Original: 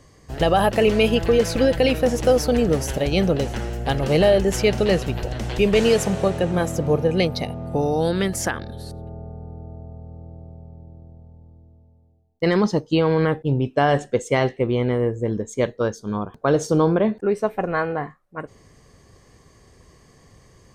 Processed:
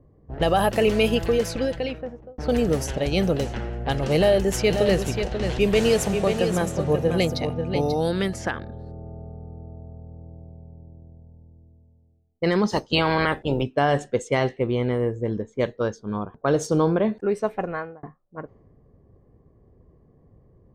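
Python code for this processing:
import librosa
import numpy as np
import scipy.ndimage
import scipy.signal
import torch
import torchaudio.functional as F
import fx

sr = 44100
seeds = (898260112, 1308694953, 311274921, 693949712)

y = fx.echo_single(x, sr, ms=537, db=-7.0, at=(4.69, 7.93), fade=0.02)
y = fx.spec_clip(y, sr, under_db=18, at=(12.71, 13.62), fade=0.02)
y = fx.edit(y, sr, fx.fade_out_span(start_s=1.13, length_s=1.25),
    fx.fade_out_span(start_s=17.58, length_s=0.45), tone=tone)
y = fx.env_lowpass(y, sr, base_hz=510.0, full_db=-16.5)
y = fx.high_shelf(y, sr, hz=11000.0, db=7.5)
y = y * librosa.db_to_amplitude(-2.5)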